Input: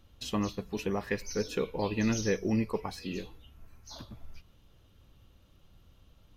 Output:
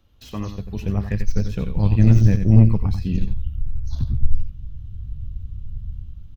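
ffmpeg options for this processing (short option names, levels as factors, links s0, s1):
-filter_complex "[0:a]acrossover=split=170|2400[s0][s1][s2];[s0]dynaudnorm=f=230:g=5:m=4.47[s3];[s2]aeval=exprs='0.0126*(abs(mod(val(0)/0.0126+3,4)-2)-1)':c=same[s4];[s3][s1][s4]amix=inputs=3:normalize=0,equalizer=f=9200:w=1.3:g=-5,asettb=1/sr,asplit=3[s5][s6][s7];[s5]atrim=end=1.464[s8];[s6]atrim=start=1.46:end=2.68,asetpts=PTS-STARTPTS,afade=t=in:d=0.004:c=qsin,afade=t=out:st=1.216:d=0.004:c=qsin,aeval=exprs='sgn(val(0))*max(abs(val(0))-0.00224,0)':c=same[s9];[s7]atrim=start=2.676[s10];[s8][s9]acrossfade=d=0.004:c1=hsin:c2=qsin[s11];[s11][s10]acrossfade=d=0.004:c1=qsin:c2=hsin,asubboost=boost=9.5:cutoff=160,asplit=2[s12][s13];[s13]aecho=0:1:90:0.376[s14];[s12][s14]amix=inputs=2:normalize=0,aeval=exprs='1.06*(cos(1*acos(clip(val(0)/1.06,-1,1)))-cos(1*PI/2))+0.119*(cos(4*acos(clip(val(0)/1.06,-1,1)))-cos(4*PI/2))+0.0376*(cos(5*acos(clip(val(0)/1.06,-1,1)))-cos(5*PI/2))+0.0335*(cos(8*acos(clip(val(0)/1.06,-1,1)))-cos(8*PI/2))':c=same,volume=0.75"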